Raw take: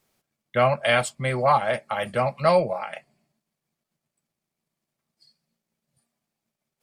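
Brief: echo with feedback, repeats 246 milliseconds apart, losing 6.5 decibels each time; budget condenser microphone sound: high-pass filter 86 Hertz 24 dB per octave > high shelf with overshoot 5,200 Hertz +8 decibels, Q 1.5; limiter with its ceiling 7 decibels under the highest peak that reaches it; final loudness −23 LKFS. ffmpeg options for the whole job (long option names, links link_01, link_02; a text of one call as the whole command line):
ffmpeg -i in.wav -af "alimiter=limit=-12.5dB:level=0:latency=1,highpass=frequency=86:width=0.5412,highpass=frequency=86:width=1.3066,highshelf=frequency=5200:width_type=q:width=1.5:gain=8,aecho=1:1:246|492|738|984|1230|1476:0.473|0.222|0.105|0.0491|0.0231|0.0109,volume=1.5dB" out.wav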